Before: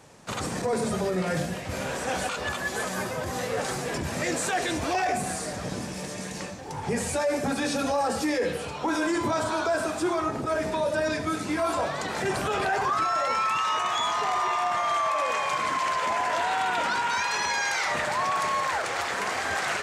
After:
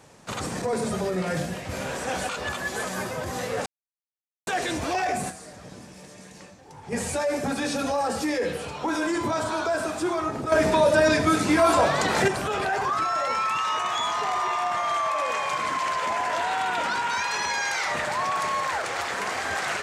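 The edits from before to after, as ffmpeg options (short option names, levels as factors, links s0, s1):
-filter_complex "[0:a]asplit=7[s0][s1][s2][s3][s4][s5][s6];[s0]atrim=end=3.66,asetpts=PTS-STARTPTS,afade=t=out:st=3.656:d=0.004:c=hsin[s7];[s1]atrim=start=3.66:end=4.47,asetpts=PTS-STARTPTS,volume=0[s8];[s2]atrim=start=4.47:end=5.41,asetpts=PTS-STARTPTS,afade=t=in:d=0.004:c=hsin,afade=t=out:st=0.82:d=0.12:c=exp:silence=0.298538[s9];[s3]atrim=start=5.41:end=6.81,asetpts=PTS-STARTPTS,volume=0.299[s10];[s4]atrim=start=6.81:end=10.522,asetpts=PTS-STARTPTS,afade=t=in:d=0.12:c=exp:silence=0.298538[s11];[s5]atrim=start=10.518:end=12.282,asetpts=PTS-STARTPTS,volume=2.37[s12];[s6]atrim=start=12.278[s13];[s7][s8][s9][s10][s11]concat=n=5:v=0:a=1[s14];[s14][s12]acrossfade=d=0.004:c1=hsin:c2=hsin[s15];[s15][s13]acrossfade=d=0.004:c1=hsin:c2=hsin"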